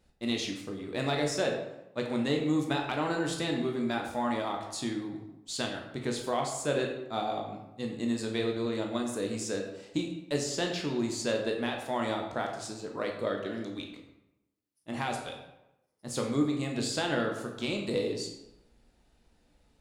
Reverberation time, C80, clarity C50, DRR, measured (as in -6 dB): 0.90 s, 7.5 dB, 5.0 dB, 1.0 dB